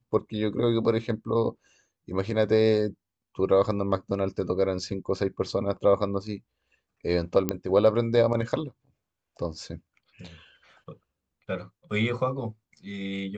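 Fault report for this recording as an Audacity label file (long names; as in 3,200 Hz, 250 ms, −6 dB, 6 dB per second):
7.490000	7.490000	click −11 dBFS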